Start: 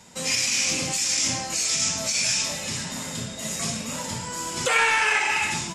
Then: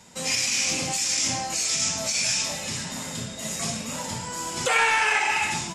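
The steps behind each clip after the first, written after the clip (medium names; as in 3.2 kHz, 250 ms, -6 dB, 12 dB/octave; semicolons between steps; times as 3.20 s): dynamic bell 770 Hz, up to +5 dB, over -45 dBFS, Q 3.7; trim -1 dB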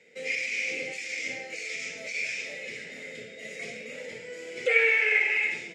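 two resonant band-passes 1 kHz, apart 2.2 oct; trim +6 dB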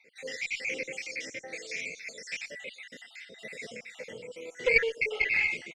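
random holes in the spectrogram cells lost 53%; Chebyshev shaper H 2 -13 dB, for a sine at -10 dBFS; delay 118 ms -23.5 dB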